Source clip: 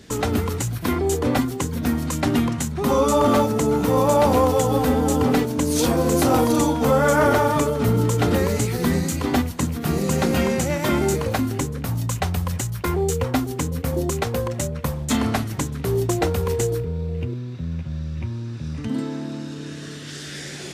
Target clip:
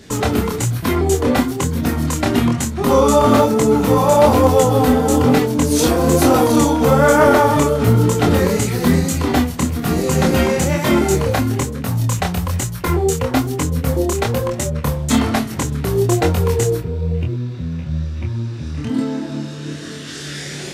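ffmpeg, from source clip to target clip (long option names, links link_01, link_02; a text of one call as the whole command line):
ffmpeg -i in.wav -af "flanger=delay=22.5:depth=6.4:speed=1.1,volume=8dB" out.wav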